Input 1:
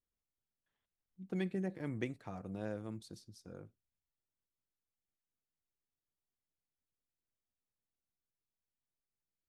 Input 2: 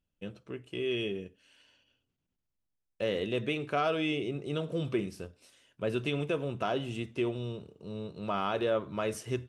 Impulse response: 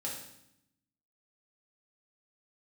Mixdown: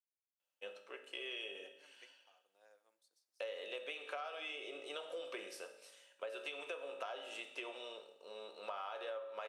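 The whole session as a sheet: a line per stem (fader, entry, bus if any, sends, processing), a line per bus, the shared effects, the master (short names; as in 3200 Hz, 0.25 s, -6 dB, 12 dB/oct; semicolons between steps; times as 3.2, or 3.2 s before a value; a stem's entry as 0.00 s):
-18.5 dB, 0.00 s, send -13 dB, high shelf 3400 Hz +10 dB; upward expander 1.5:1, over -50 dBFS
-3.5 dB, 0.40 s, send -3 dB, dry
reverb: on, RT60 0.75 s, pre-delay 3 ms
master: HPF 550 Hz 24 dB/oct; compressor 10:1, threshold -41 dBFS, peak gain reduction 15.5 dB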